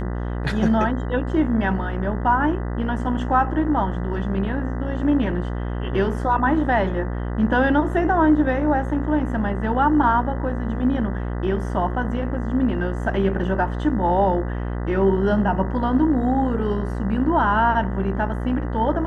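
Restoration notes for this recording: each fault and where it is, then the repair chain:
mains buzz 60 Hz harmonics 33 −26 dBFS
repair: hum removal 60 Hz, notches 33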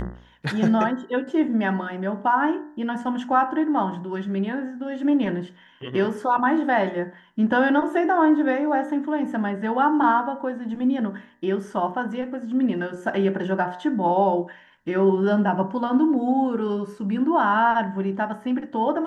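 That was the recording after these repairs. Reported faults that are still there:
none of them is left

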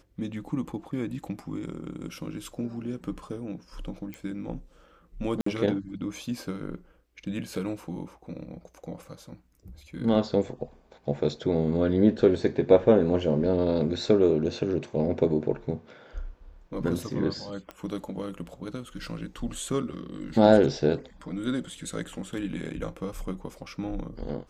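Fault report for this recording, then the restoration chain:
0:04.14: click −24 dBFS
0:05.41–0:05.46: drop-out 54 ms
0:17.71: click −25 dBFS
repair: click removal
repair the gap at 0:05.41, 54 ms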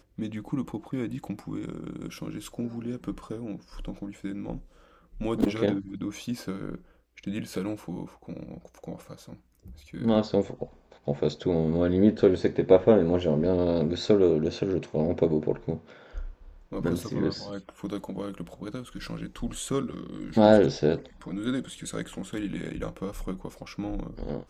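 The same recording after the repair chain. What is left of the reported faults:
none of them is left

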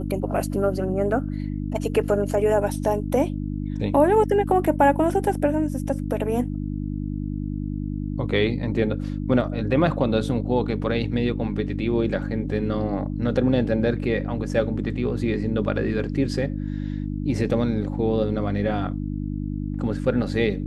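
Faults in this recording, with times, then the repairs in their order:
mains hum 50 Hz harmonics 6 −28 dBFS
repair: hum removal 50 Hz, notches 6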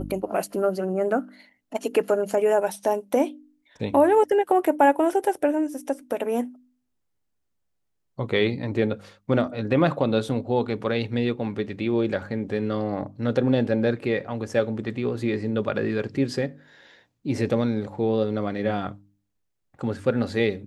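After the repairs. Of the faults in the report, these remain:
none of them is left

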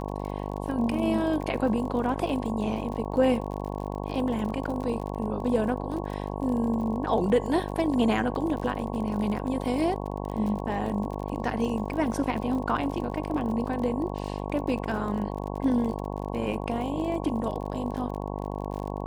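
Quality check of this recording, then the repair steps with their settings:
mains buzz 50 Hz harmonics 22 −33 dBFS
surface crackle 40 per second −34 dBFS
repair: click removal
hum removal 50 Hz, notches 22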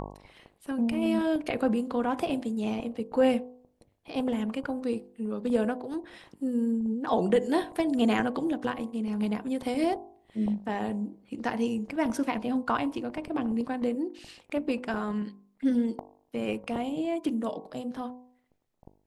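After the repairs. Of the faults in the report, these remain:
none of them is left

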